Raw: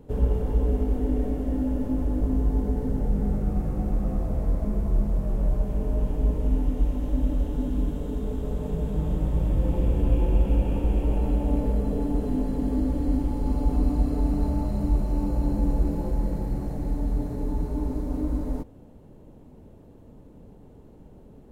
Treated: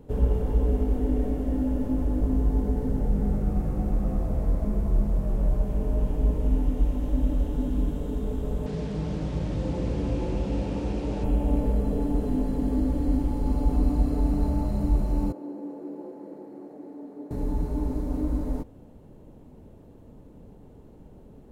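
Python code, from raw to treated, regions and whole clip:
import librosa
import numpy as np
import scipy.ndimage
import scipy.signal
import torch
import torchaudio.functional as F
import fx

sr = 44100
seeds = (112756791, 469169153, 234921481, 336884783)

y = fx.chain(x, sr, fx.delta_mod(bps=64000, step_db=-37.5),
    fx.highpass(hz=85.0, slope=12),
    fx.air_absorb(metres=100.0), at=(8.66, 11.24))
y = fx.chain(y, sr, fx.ladder_highpass(hz=280.0, resonance_pct=45),
    fx.high_shelf(hz=2500.0, db=-12.0), at=(15.32, 17.31))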